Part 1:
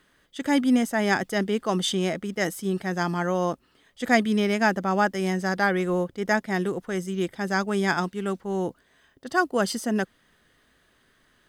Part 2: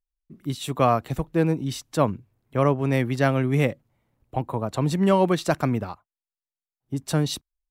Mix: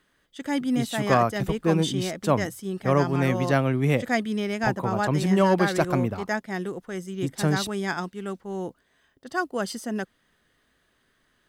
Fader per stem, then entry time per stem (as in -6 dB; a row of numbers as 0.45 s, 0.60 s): -4.5 dB, -1.0 dB; 0.00 s, 0.30 s